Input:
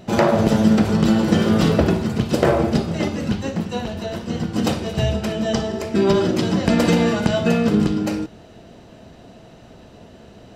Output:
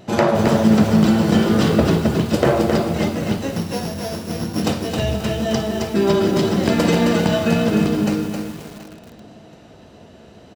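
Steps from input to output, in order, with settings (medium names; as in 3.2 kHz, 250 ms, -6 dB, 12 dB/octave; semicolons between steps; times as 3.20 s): 3.56–4.62 s: sorted samples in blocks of 8 samples; high-pass 55 Hz 12 dB/octave; hum notches 60/120/180/240 Hz; wow and flutter 19 cents; feedback delay 728 ms, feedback 26%, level -17.5 dB; bit-crushed delay 266 ms, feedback 35%, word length 6-bit, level -4.5 dB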